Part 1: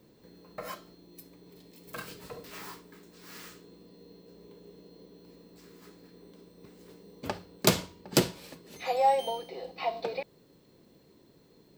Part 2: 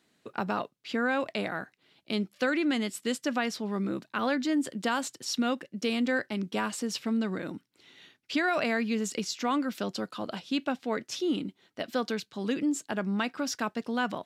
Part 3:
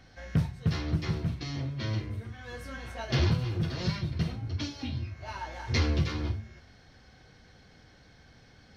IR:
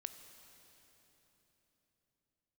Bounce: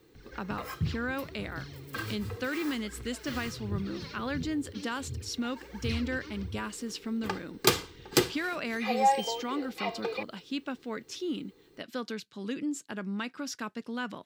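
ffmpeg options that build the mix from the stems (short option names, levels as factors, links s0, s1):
-filter_complex "[0:a]equalizer=f=1400:w=0.51:g=5,aecho=1:1:2.5:0.65,volume=0.75[s0];[1:a]volume=0.596,asplit=2[s1][s2];[2:a]aphaser=in_gain=1:out_gain=1:delay=3.9:decay=0.74:speed=1.4:type=triangular,adelay=150,volume=0.562[s3];[s2]apad=whole_len=392982[s4];[s3][s4]sidechaincompress=threshold=0.0141:ratio=8:attack=20:release=1150[s5];[s0][s1][s5]amix=inputs=3:normalize=0,equalizer=f=700:t=o:w=0.64:g=-7"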